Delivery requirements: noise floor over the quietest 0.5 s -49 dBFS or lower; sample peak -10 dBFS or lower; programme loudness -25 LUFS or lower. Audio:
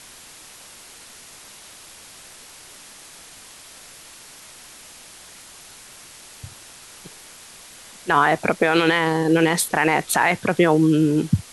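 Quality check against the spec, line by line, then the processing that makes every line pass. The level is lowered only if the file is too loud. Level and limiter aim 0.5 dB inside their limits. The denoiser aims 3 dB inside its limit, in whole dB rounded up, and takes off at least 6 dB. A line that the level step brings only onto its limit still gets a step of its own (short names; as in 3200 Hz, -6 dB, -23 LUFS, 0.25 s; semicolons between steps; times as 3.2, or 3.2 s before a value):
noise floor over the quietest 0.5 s -44 dBFS: fail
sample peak -5.5 dBFS: fail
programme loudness -18.5 LUFS: fail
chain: gain -7 dB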